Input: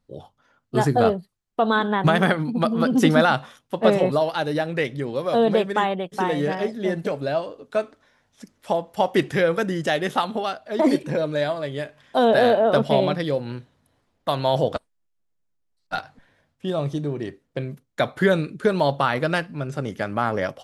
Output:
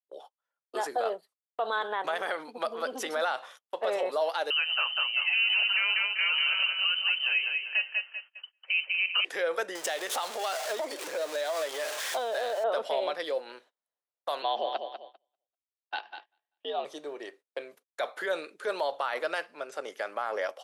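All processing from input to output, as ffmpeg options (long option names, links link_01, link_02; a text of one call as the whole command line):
ffmpeg -i in.wav -filter_complex "[0:a]asettb=1/sr,asplit=3[link_01][link_02][link_03];[link_01]atrim=end=4.504[link_04];[link_02]atrim=start=4.5:end=9.25,asetpts=PTS-STARTPTS,afade=type=in:duration=0.004:curve=qsin,afade=type=out:start_time=4.746:duration=0.004:curve=qsin,aecho=1:1:195|390|585|780|975:0.531|0.202|0.0767|0.0291|0.0111,atrim=end_sample=209475,lowpass=frequency=2700:width_type=q:width=0.5098,lowpass=frequency=2700:width_type=q:width=0.6013,lowpass=frequency=2700:width_type=q:width=0.9,lowpass=frequency=2700:width_type=q:width=2.563,afreqshift=-3200[link_05];[link_03]atrim=start=9.246[link_06];[link_04][link_05]acrossfade=duration=0.004:curve1=hsin:curve2=qsin[link_07];[link_07][link_06]acrossfade=duration=0.004:curve1=qsin:curve2=hsin,asettb=1/sr,asplit=3[link_08][link_09][link_10];[link_08]atrim=end=9.754[link_11];[link_09]atrim=start=9.75:end=12.64,asetpts=PTS-STARTPTS,afade=type=in:duration=0.004:curve=qsin,afade=type=out:start_time=2.886:duration=0.004:curve=qsin,aeval=exprs='val(0)+0.5*0.0447*sgn(val(0))':channel_layout=same,equalizer=frequency=7100:width_type=o:width=1.8:gain=6,acompressor=threshold=-23dB:ratio=10:attack=3.2:release=140:knee=1:detection=peak[link_12];[link_10]atrim=start=12.636[link_13];[link_11][link_12]acrossfade=duration=0.004:curve1=hsin:curve2=qsin[link_14];[link_14][link_13]acrossfade=duration=0.004:curve1=qsin:curve2=hsin,asettb=1/sr,asplit=3[link_15][link_16][link_17];[link_15]atrim=end=14.424[link_18];[link_16]atrim=start=14.42:end=16.85,asetpts=PTS-STARTPTS,afade=type=in:duration=0.004:curve=qsin,afade=type=out:start_time=2.426:duration=0.004:curve=qsin,afreqshift=80,highpass=140,equalizer=frequency=190:width_type=q:width=4:gain=-3,equalizer=frequency=580:width_type=q:width=4:gain=-5,equalizer=frequency=910:width_type=q:width=4:gain=-4,equalizer=frequency=1400:width_type=q:width=4:gain=-8,equalizer=frequency=2100:width_type=q:width=4:gain=-4,equalizer=frequency=3000:width_type=q:width=4:gain=7,lowpass=frequency=3800:width=0.5412,lowpass=frequency=3800:width=1.3066,aecho=1:1:196|392|588|784:0.355|0.114|0.0363|0.0116,atrim=end_sample=107163[link_19];[link_17]atrim=start=16.846[link_20];[link_18][link_19]acrossfade=duration=0.004:curve1=hsin:curve2=qsin[link_21];[link_21][link_20]acrossfade=duration=0.004:curve1=qsin:curve2=hsin,agate=range=-24dB:threshold=-43dB:ratio=16:detection=peak,alimiter=limit=-15dB:level=0:latency=1:release=34,highpass=frequency=470:width=0.5412,highpass=frequency=470:width=1.3066,volume=-3dB" out.wav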